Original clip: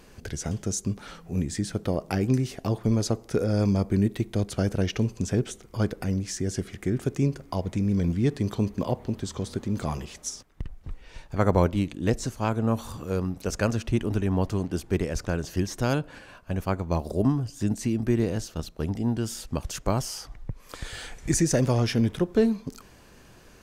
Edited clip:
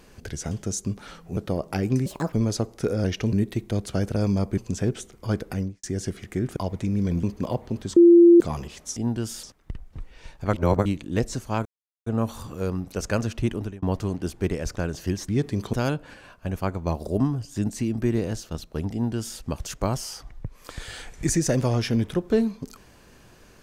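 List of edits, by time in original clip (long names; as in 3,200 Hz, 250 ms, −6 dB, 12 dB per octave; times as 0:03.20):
0:01.37–0:01.75: remove
0:02.44–0:02.83: play speed 148%
0:03.55–0:03.96: swap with 0:04.80–0:05.08
0:06.07–0:06.34: fade out and dull
0:07.07–0:07.49: remove
0:08.16–0:08.61: move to 0:15.78
0:09.34–0:09.78: beep over 343 Hz −8.5 dBFS
0:11.44–0:11.76: reverse
0:12.56: splice in silence 0.41 s
0:14.02–0:14.32: fade out
0:18.97–0:19.44: duplicate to 0:10.34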